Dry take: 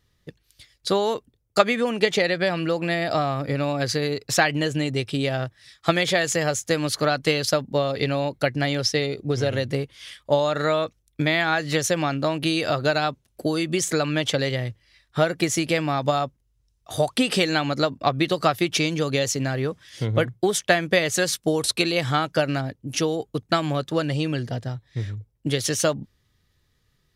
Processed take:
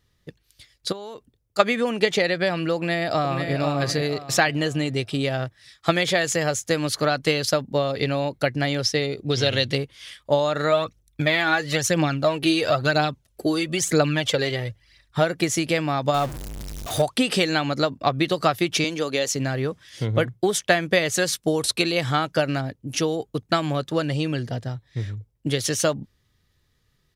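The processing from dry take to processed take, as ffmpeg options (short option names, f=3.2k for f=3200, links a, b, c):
-filter_complex "[0:a]asplit=3[a][b][c];[a]afade=t=out:st=0.91:d=0.02[d];[b]acompressor=threshold=-33dB:ratio=8:attack=3.2:release=140:knee=1:detection=peak,afade=t=in:st=0.91:d=0.02,afade=t=out:st=1.58:d=0.02[e];[c]afade=t=in:st=1.58:d=0.02[f];[d][e][f]amix=inputs=3:normalize=0,asplit=2[g][h];[h]afade=t=in:st=2.75:d=0.01,afade=t=out:st=3.52:d=0.01,aecho=0:1:490|980|1470|1960:0.501187|0.175416|0.0613954|0.0214884[i];[g][i]amix=inputs=2:normalize=0,asettb=1/sr,asplit=3[j][k][l];[j]atrim=end=9.264[m];[k]atrim=start=9.26:end=9.78,asetpts=PTS-STARTPTS,afade=t=in:d=0.004:c=qsin,afade=t=out:st=0.516:d=0.004:c=qsin,equalizer=f=3.6k:w=1:g=13[n];[l]atrim=start=9.776[o];[m][n]acrossfade=d=0.004:c1=hsin:c2=qsin[p];[p][o]acrossfade=d=0.004:c1=qsin:c2=hsin,asplit=3[q][r][s];[q]afade=t=out:st=10.71:d=0.02[t];[r]aphaser=in_gain=1:out_gain=1:delay=3:decay=0.5:speed=1:type=triangular,afade=t=in:st=10.71:d=0.02,afade=t=out:st=15.2:d=0.02[u];[s]afade=t=in:st=15.2:d=0.02[v];[t][u][v]amix=inputs=3:normalize=0,asettb=1/sr,asplit=3[w][x][y];[w]atrim=end=16.144[z];[x]atrim=start=16.14:end=17.02,asetpts=PTS-STARTPTS,afade=t=in:d=0.004:c=qsin,afade=t=out:st=0.876:d=0.004:c=qsin,aeval=exprs='val(0)+0.5*0.0422*sgn(val(0))':c=same[aa];[y]atrim=start=17.016[ab];[z][aa]acrossfade=d=0.004:c1=hsin:c2=qsin[ac];[ac][ab]acrossfade=d=0.004:c1=qsin:c2=hsin,asettb=1/sr,asplit=3[ad][ae][af];[ad]atrim=end=18.844[ag];[ae]atrim=start=18.84:end=19.33,asetpts=PTS-STARTPTS,afade=t=in:d=0.004:c=qsin,afade=t=out:st=0.486:d=0.004:c=qsin,highpass=260[ah];[af]atrim=start=19.326[ai];[ag][ah]acrossfade=d=0.004:c1=hsin:c2=qsin[aj];[aj][ai]acrossfade=d=0.004:c1=qsin:c2=hsin"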